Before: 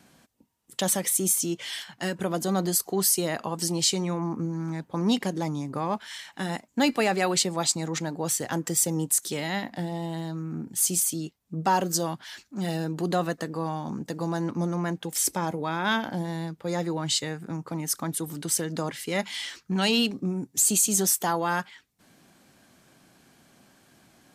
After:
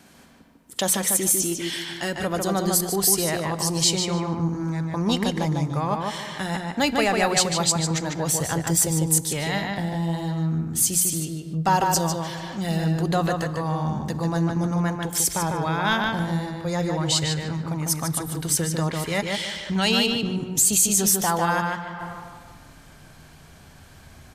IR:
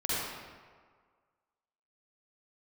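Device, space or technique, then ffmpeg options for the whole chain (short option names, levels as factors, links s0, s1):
ducked reverb: -filter_complex "[0:a]bandreject=f=60:t=h:w=6,bandreject=f=120:t=h:w=6,bandreject=f=180:t=h:w=6,asubboost=boost=11:cutoff=77,asplit=2[s0][s1];[s1]adelay=149,lowpass=f=4000:p=1,volume=0.708,asplit=2[s2][s3];[s3]adelay=149,lowpass=f=4000:p=1,volume=0.28,asplit=2[s4][s5];[s5]adelay=149,lowpass=f=4000:p=1,volume=0.28,asplit=2[s6][s7];[s7]adelay=149,lowpass=f=4000:p=1,volume=0.28[s8];[s0][s2][s4][s6][s8]amix=inputs=5:normalize=0,asplit=3[s9][s10][s11];[1:a]atrim=start_sample=2205[s12];[s10][s12]afir=irnorm=-1:irlink=0[s13];[s11]apad=whole_len=1100065[s14];[s13][s14]sidechaincompress=threshold=0.00708:ratio=8:attack=16:release=259,volume=0.398[s15];[s9][s15]amix=inputs=2:normalize=0,volume=1.41"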